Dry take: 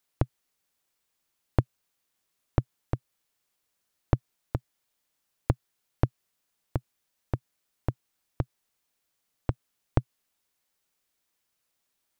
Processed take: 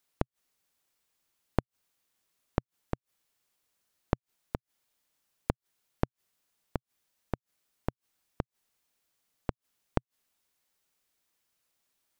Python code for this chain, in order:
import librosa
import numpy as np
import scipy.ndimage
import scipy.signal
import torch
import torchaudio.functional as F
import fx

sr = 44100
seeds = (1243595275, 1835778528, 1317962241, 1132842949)

y = fx.gate_flip(x, sr, shuts_db=-16.0, range_db=-29)